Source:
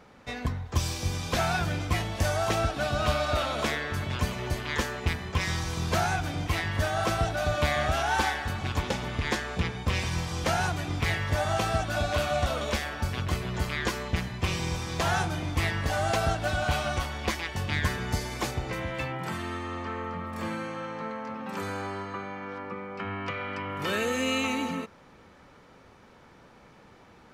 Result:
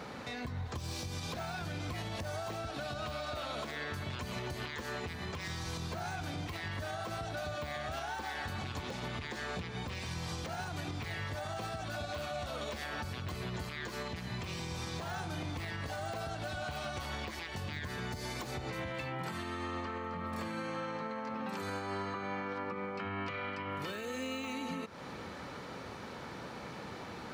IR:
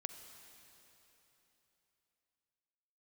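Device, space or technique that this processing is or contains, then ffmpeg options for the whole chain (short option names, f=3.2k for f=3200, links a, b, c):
broadcast voice chain: -af "highpass=77,deesser=0.9,acompressor=threshold=-42dB:ratio=4,equalizer=f=4.2k:t=o:w=0.3:g=5,alimiter=level_in=15.5dB:limit=-24dB:level=0:latency=1:release=172,volume=-15.5dB,volume=9.5dB"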